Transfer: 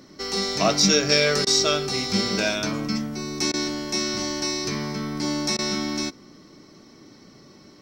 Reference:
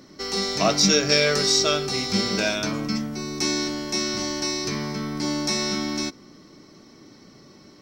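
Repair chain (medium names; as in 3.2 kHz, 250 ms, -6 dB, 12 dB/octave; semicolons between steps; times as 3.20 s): interpolate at 1.45/3.52/5.57 s, 16 ms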